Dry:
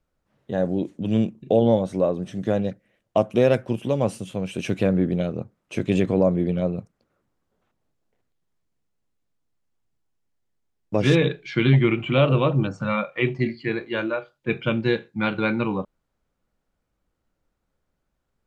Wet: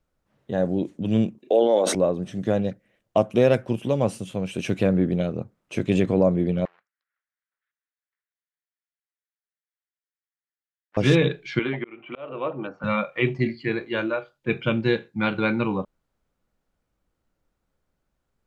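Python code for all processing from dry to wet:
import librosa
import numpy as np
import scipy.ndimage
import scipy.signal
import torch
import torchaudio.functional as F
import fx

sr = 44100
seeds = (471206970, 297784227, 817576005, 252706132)

y = fx.chain(x, sr, fx.highpass(hz=330.0, slope=24),
    fx.sustainer(db_per_s=39.0), at=(1.38, 1.95))
y = fx.chain(y, sr, fx.lower_of_two(delay_ms=0.54),
    fx.ladder_bandpass(hz=2000.0, resonance_pct=40), at=(6.65, 10.97))
y = fx.chain(y, sr, fx.bandpass_edges(low_hz=400.0, high_hz=2400.0),
    fx.air_absorb(metres=130.0),
    fx.auto_swell(attack_ms=468.0), at=(11.59, 12.84))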